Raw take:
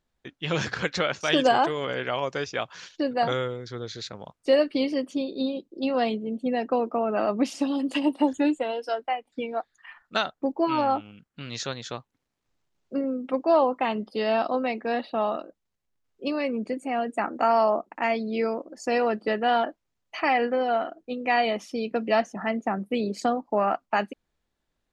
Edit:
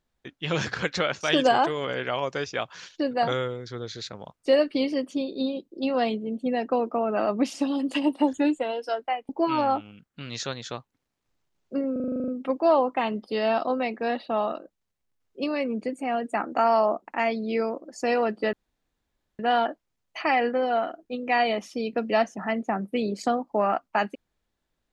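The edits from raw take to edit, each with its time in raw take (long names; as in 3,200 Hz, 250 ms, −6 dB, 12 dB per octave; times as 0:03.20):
0:09.29–0:10.49: remove
0:13.12: stutter 0.04 s, 10 plays
0:19.37: splice in room tone 0.86 s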